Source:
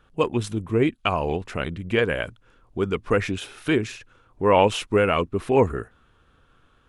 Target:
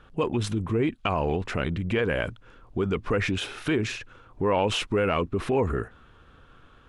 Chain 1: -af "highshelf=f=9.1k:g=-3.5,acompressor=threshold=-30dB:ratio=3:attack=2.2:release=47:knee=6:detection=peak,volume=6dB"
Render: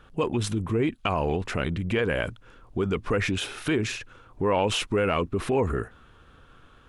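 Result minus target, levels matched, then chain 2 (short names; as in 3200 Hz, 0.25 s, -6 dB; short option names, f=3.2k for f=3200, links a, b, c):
8000 Hz band +3.5 dB
-af "highshelf=f=9.1k:g=-14.5,acompressor=threshold=-30dB:ratio=3:attack=2.2:release=47:knee=6:detection=peak,volume=6dB"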